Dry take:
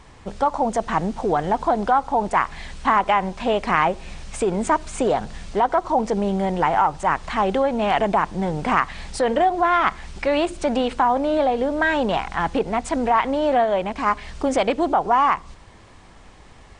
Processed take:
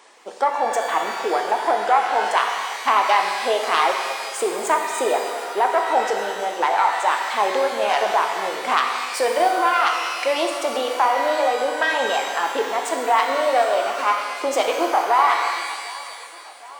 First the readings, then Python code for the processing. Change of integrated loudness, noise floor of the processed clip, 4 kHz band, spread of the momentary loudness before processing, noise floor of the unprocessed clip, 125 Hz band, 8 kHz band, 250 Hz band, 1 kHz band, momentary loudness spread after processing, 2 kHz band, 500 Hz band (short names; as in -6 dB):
+0.5 dB, -38 dBFS, +7.0 dB, 6 LU, -46 dBFS, under -25 dB, +7.0 dB, -10.0 dB, +1.5 dB, 6 LU, +3.5 dB, 0.0 dB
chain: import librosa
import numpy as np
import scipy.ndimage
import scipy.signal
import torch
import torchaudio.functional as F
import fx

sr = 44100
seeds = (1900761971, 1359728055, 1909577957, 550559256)

y = fx.self_delay(x, sr, depth_ms=0.096)
y = fx.dereverb_blind(y, sr, rt60_s=1.8)
y = scipy.signal.sosfilt(scipy.signal.butter(4, 370.0, 'highpass', fs=sr, output='sos'), y)
y = fx.high_shelf(y, sr, hz=6500.0, db=6.5)
y = fx.echo_thinned(y, sr, ms=760, feedback_pct=81, hz=550.0, wet_db=-20.5)
y = fx.rev_shimmer(y, sr, seeds[0], rt60_s=1.9, semitones=12, shimmer_db=-8, drr_db=2.0)